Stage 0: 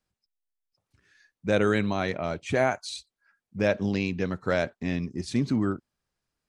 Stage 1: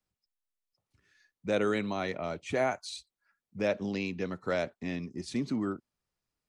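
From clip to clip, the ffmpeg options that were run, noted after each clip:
-filter_complex "[0:a]bandreject=f=1.6k:w=14,acrossover=split=170|690|5000[a][b][c][d];[a]acompressor=threshold=-43dB:ratio=6[e];[e][b][c][d]amix=inputs=4:normalize=0,volume=-4.5dB"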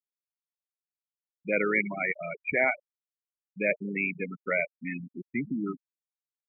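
-filter_complex "[0:a]lowpass=f=2.2k:t=q:w=6.3,asplit=7[a][b][c][d][e][f][g];[b]adelay=88,afreqshift=-38,volume=-16dB[h];[c]adelay=176,afreqshift=-76,volume=-20.2dB[i];[d]adelay=264,afreqshift=-114,volume=-24.3dB[j];[e]adelay=352,afreqshift=-152,volume=-28.5dB[k];[f]adelay=440,afreqshift=-190,volume=-32.6dB[l];[g]adelay=528,afreqshift=-228,volume=-36.8dB[m];[a][h][i][j][k][l][m]amix=inputs=7:normalize=0,afftfilt=real='re*gte(hypot(re,im),0.0891)':imag='im*gte(hypot(re,im),0.0891)':win_size=1024:overlap=0.75"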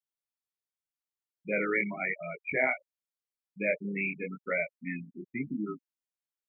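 -af "flanger=delay=18:depth=7.9:speed=0.87"

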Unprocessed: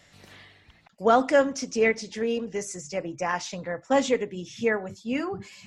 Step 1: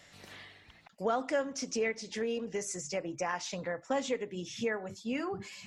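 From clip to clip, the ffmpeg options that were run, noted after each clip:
-af "lowshelf=f=200:g=-5.5,acompressor=threshold=-33dB:ratio=2.5"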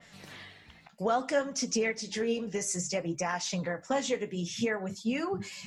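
-af "equalizer=f=170:w=2.9:g=7,flanger=delay=4.3:depth=10:regen=57:speed=0.6:shape=sinusoidal,adynamicequalizer=threshold=0.002:dfrequency=3400:dqfactor=0.7:tfrequency=3400:tqfactor=0.7:attack=5:release=100:ratio=0.375:range=2:mode=boostabove:tftype=highshelf,volume=6.5dB"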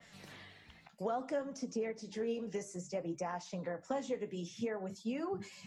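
-filter_complex "[0:a]acrossover=split=210|1100[a][b][c];[a]acompressor=threshold=-47dB:ratio=4[d];[b]acompressor=threshold=-29dB:ratio=4[e];[c]acompressor=threshold=-49dB:ratio=4[f];[d][e][f]amix=inputs=3:normalize=0,volume=-4dB"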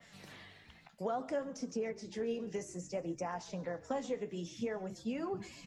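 -filter_complex "[0:a]asplit=6[a][b][c][d][e][f];[b]adelay=137,afreqshift=-51,volume=-20.5dB[g];[c]adelay=274,afreqshift=-102,volume=-24.7dB[h];[d]adelay=411,afreqshift=-153,volume=-28.8dB[i];[e]adelay=548,afreqshift=-204,volume=-33dB[j];[f]adelay=685,afreqshift=-255,volume=-37.1dB[k];[a][g][h][i][j][k]amix=inputs=6:normalize=0"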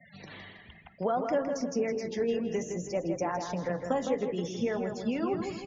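-filter_complex "[0:a]afftfilt=real='re*gte(hypot(re,im),0.00224)':imag='im*gte(hypot(re,im),0.00224)':win_size=1024:overlap=0.75,asplit=2[a][b];[b]adelay=161,lowpass=f=3.2k:p=1,volume=-6dB,asplit=2[c][d];[d]adelay=161,lowpass=f=3.2k:p=1,volume=0.44,asplit=2[e][f];[f]adelay=161,lowpass=f=3.2k:p=1,volume=0.44,asplit=2[g][h];[h]adelay=161,lowpass=f=3.2k:p=1,volume=0.44,asplit=2[i][j];[j]adelay=161,lowpass=f=3.2k:p=1,volume=0.44[k];[a][c][e][g][i][k]amix=inputs=6:normalize=0,volume=7dB" -ar 16000 -c:a wmav2 -b:a 128k

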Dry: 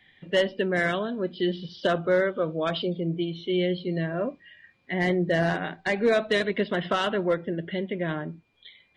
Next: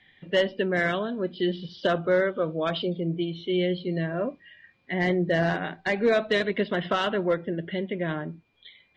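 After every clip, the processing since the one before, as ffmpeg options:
-af "lowpass=6.2k"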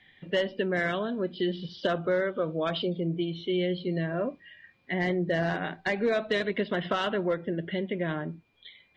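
-af "acompressor=threshold=-26dB:ratio=2"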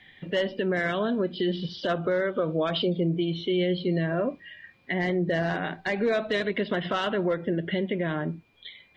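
-af "alimiter=limit=-23dB:level=0:latency=1:release=104,volume=5.5dB"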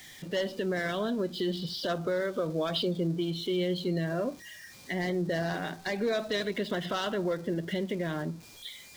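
-af "aeval=exprs='val(0)+0.5*0.00596*sgn(val(0))':c=same,highshelf=f=3.5k:t=q:w=1.5:g=7,volume=-4.5dB"

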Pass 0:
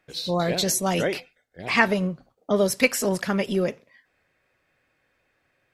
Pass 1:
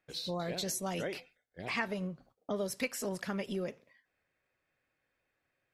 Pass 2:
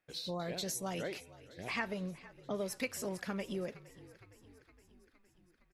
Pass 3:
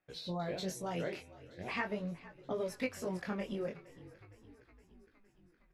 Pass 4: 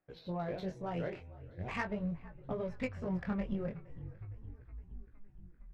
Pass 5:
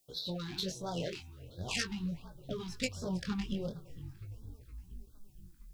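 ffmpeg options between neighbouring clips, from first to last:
-af "agate=range=-7dB:threshold=-52dB:ratio=16:detection=peak,acompressor=threshold=-34dB:ratio=2,volume=-5dB"
-filter_complex "[0:a]asplit=7[a][b][c][d][e][f][g];[b]adelay=463,afreqshift=-47,volume=-19dB[h];[c]adelay=926,afreqshift=-94,volume=-22.9dB[i];[d]adelay=1389,afreqshift=-141,volume=-26.8dB[j];[e]adelay=1852,afreqshift=-188,volume=-30.6dB[k];[f]adelay=2315,afreqshift=-235,volume=-34.5dB[l];[g]adelay=2778,afreqshift=-282,volume=-38.4dB[m];[a][h][i][j][k][l][m]amix=inputs=7:normalize=0,volume=-2.5dB"
-af "highshelf=f=4.2k:g=-11.5,flanger=delay=16.5:depth=7.9:speed=0.42,volume=4.5dB"
-af "asubboost=boost=9:cutoff=120,adynamicsmooth=sensitivity=4:basefreq=1.7k,volume=1dB"
-filter_complex "[0:a]acrossover=split=1900[a][b];[b]aexciter=amount=10.7:drive=4.7:freq=2.9k[c];[a][c]amix=inputs=2:normalize=0,afftfilt=real='re*(1-between(b*sr/1024,510*pow(2400/510,0.5+0.5*sin(2*PI*1.4*pts/sr))/1.41,510*pow(2400/510,0.5+0.5*sin(2*PI*1.4*pts/sr))*1.41))':imag='im*(1-between(b*sr/1024,510*pow(2400/510,0.5+0.5*sin(2*PI*1.4*pts/sr))/1.41,510*pow(2400/510,0.5+0.5*sin(2*PI*1.4*pts/sr))*1.41))':win_size=1024:overlap=0.75"

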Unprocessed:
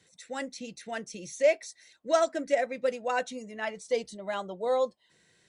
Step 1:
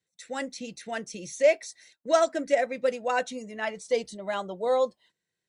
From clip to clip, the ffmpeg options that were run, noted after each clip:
-af "agate=range=-23dB:threshold=-56dB:ratio=16:detection=peak,volume=2.5dB"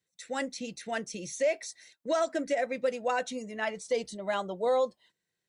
-af "alimiter=limit=-19.5dB:level=0:latency=1:release=92"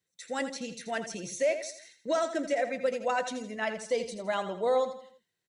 -af "aecho=1:1:82|164|246|328:0.299|0.122|0.0502|0.0206"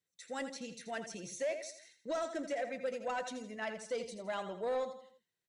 -af "asoftclip=type=tanh:threshold=-22dB,volume=-6.5dB"

